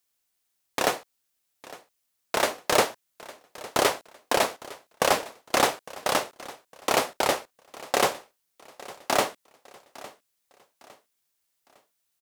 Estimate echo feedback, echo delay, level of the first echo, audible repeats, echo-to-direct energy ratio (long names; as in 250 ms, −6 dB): 36%, 857 ms, −19.5 dB, 2, −19.0 dB